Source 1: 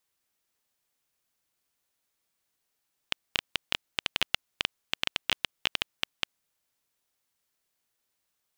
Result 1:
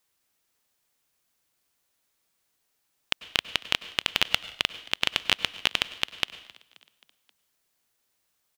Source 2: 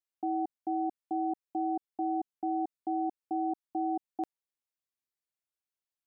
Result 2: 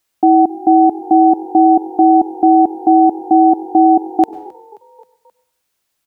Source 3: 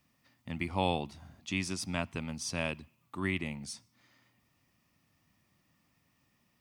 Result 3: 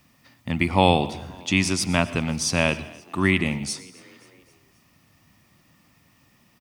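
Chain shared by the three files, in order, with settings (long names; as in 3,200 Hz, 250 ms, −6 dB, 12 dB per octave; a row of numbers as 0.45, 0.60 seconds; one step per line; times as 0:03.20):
echo with shifted repeats 265 ms, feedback 57%, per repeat +45 Hz, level −23.5 dB
dense smooth reverb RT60 0.59 s, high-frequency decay 1×, pre-delay 85 ms, DRR 16 dB
normalise the peak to −1.5 dBFS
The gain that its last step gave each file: +5.0, +22.5, +13.0 decibels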